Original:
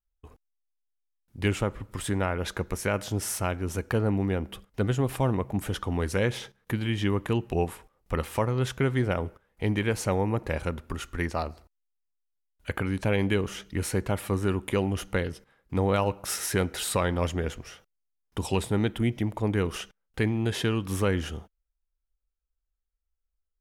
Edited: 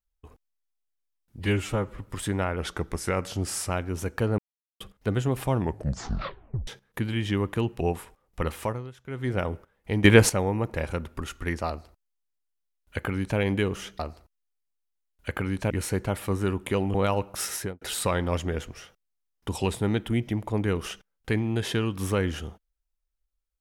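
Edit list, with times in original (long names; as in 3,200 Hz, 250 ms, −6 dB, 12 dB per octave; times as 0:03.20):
0:01.39–0:01.76: time-stretch 1.5×
0:02.41–0:03.43: play speed 92%
0:04.11–0:04.53: silence
0:05.27: tape stop 1.13 s
0:08.30–0:09.11: duck −20 dB, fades 0.34 s
0:09.77–0:10.02: clip gain +11.5 dB
0:11.40–0:13.11: duplicate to 0:13.72
0:14.96–0:15.84: remove
0:16.42–0:16.71: fade out and dull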